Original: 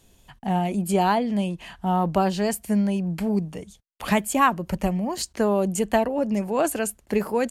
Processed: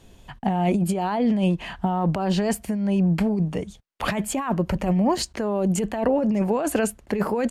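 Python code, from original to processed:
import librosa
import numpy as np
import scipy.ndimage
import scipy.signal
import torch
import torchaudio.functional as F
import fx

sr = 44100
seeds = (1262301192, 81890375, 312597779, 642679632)

y = fx.over_compress(x, sr, threshold_db=-26.0, ratio=-1.0)
y = fx.lowpass(y, sr, hz=2900.0, slope=6)
y = F.gain(torch.from_numpy(y), 4.5).numpy()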